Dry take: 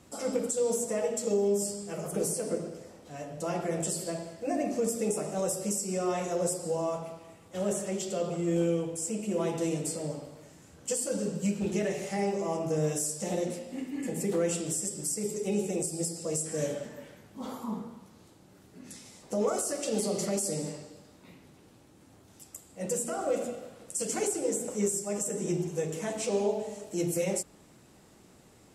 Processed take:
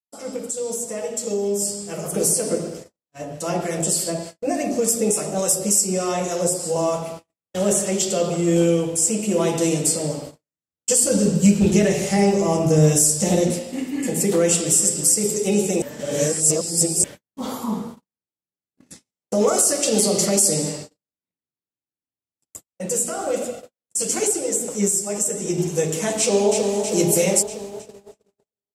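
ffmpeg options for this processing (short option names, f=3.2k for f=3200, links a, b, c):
-filter_complex "[0:a]asettb=1/sr,asplit=3[a][b][c];[a]atrim=end=2.984[d];[b]atrim=start=2.98:end=6.76,asetpts=PTS-STARTPTS,afade=t=in:d=0.004:c=qsin,afade=t=out:st=3.776:d=0.004:c=qsin,acrossover=split=990[e][f];[e]aeval=exprs='val(0)*(1-0.5/2+0.5/2*cos(2*PI*3.4*n/s))':c=same[g];[f]aeval=exprs='val(0)*(1-0.5/2-0.5/2*cos(2*PI*3.4*n/s))':c=same[h];[g][h]amix=inputs=2:normalize=0[i];[c]atrim=start=6.756[j];[d][i]acrossfade=d=0.004:c1=hsin:c2=qsin[k];[k][j]acrossfade=d=0.004:c1=qsin:c2=hsin,asettb=1/sr,asplit=3[l][m][n];[l]atrim=end=11.024[o];[m]atrim=start=11.02:end=13.6,asetpts=PTS-STARTPTS,afade=t=in:d=0.004:c=qsin,afade=t=out:st=2.576:d=0.004:c=qsin,lowshelf=f=180:g=11.5[p];[n]atrim=start=13.596[q];[o][p]acrossfade=d=0.004:c1=hsin:c2=qsin[r];[r][q]acrossfade=d=0.004:c1=qsin:c2=hsin,asplit=2[s][t];[t]afade=t=in:st=14.29:d=0.01,afade=t=out:st=14.7:d=0.01,aecho=0:1:220|440|660|880|1100|1320:0.211349|0.126809|0.0760856|0.0456514|0.0273908|0.0164345[u];[s][u]amix=inputs=2:normalize=0,asettb=1/sr,asplit=3[v][w][x];[v]atrim=end=22.664[y];[w]atrim=start=22.66:end=25.58,asetpts=PTS-STARTPTS,afade=t=in:d=0.004:c=qsin,afade=t=out:st=2.916:d=0.004:c=qsin,flanger=delay=1.4:depth=9.7:regen=55:speed=1.1:shape=sinusoidal[z];[x]atrim=start=25.576[aa];[y][z]acrossfade=d=0.004:c1=hsin:c2=qsin[ab];[ab][aa]acrossfade=d=0.004:c1=qsin:c2=hsin,asplit=2[ac][ad];[ad]afade=t=in:st=26.19:d=0.01,afade=t=out:st=26.72:d=0.01,aecho=0:1:320|640|960|1280|1600|1920|2240|2560|2880|3200:0.562341|0.365522|0.237589|0.154433|0.100381|0.0652479|0.0424112|0.0275673|0.0179187|0.0116472[ae];[ac][ae]amix=inputs=2:normalize=0,asplit=3[af][ag][ah];[af]atrim=end=15.822[ai];[ag]atrim=start=15.818:end=17.042,asetpts=PTS-STARTPTS,areverse[aj];[ah]atrim=start=17.038[ak];[ai][aj]acrossfade=d=0.004:c1=hsin:c2=hsin[al];[al][ak]acrossfade=d=0.004:c1=hsin:c2=hsin,agate=range=-55dB:threshold=-44dB:ratio=16:detection=peak,dynaudnorm=f=770:g=5:m=10dB,adynamicequalizer=threshold=0.00794:dfrequency=2800:dqfactor=0.7:tfrequency=2800:tqfactor=0.7:attack=5:release=100:ratio=0.375:range=3:mode=boostabove:tftype=highshelf"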